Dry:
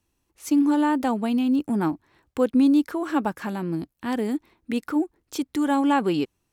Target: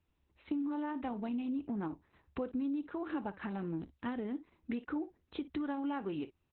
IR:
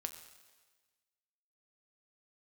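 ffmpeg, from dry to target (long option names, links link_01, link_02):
-af "equalizer=frequency=72:width=3.3:gain=13,aecho=1:1:25|57:0.178|0.126,acompressor=threshold=-29dB:ratio=6,equalizer=frequency=3500:width=7.9:gain=-6,volume=-5dB" -ar 48000 -c:a libopus -b:a 8k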